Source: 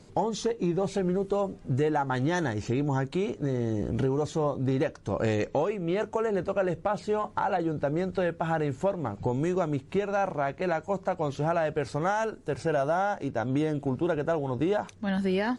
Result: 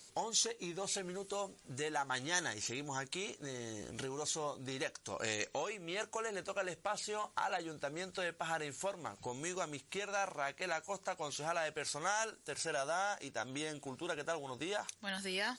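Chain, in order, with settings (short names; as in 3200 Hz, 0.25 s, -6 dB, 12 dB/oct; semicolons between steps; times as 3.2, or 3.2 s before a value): pre-emphasis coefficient 0.97; gain +8.5 dB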